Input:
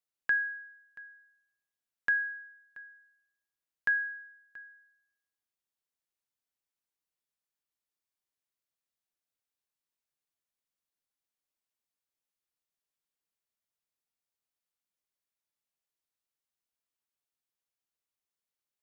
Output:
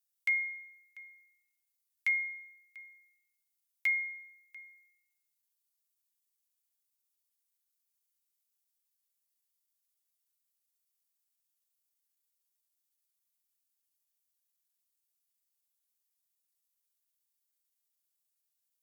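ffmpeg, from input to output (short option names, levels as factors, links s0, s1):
-af "asetrate=57191,aresample=44100,atempo=0.771105,aderivative,volume=2.51"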